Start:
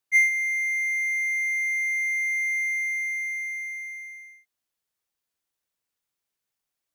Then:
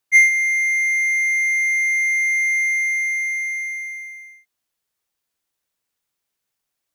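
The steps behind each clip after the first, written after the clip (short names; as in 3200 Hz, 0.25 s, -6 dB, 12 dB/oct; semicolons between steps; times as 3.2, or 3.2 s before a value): dynamic EQ 4700 Hz, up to +6 dB, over -44 dBFS, Q 0.77; gain +5 dB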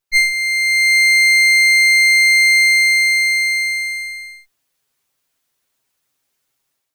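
minimum comb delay 7.5 ms; AGC gain up to 10 dB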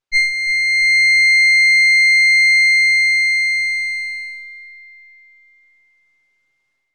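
air absorption 90 m; darkening echo 0.34 s, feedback 68%, low-pass 2600 Hz, level -12 dB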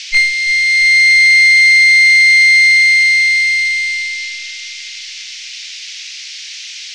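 rattling part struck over -47 dBFS, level -15 dBFS; band noise 2100–6100 Hz -33 dBFS; gain +4 dB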